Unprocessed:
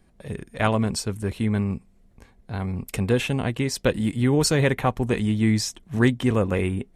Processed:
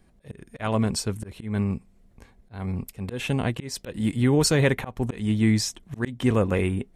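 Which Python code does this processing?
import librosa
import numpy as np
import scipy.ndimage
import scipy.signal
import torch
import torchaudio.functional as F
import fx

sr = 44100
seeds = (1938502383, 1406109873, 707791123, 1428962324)

y = fx.auto_swell(x, sr, attack_ms=206.0)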